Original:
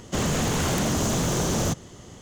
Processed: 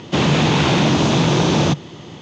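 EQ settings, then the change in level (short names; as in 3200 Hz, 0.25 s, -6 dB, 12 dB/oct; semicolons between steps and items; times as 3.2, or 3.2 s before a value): speaker cabinet 110–5200 Hz, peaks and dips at 150 Hz +7 dB, 320 Hz +6 dB, 900 Hz +5 dB, 2500 Hz +7 dB, 3600 Hz +6 dB; +7.0 dB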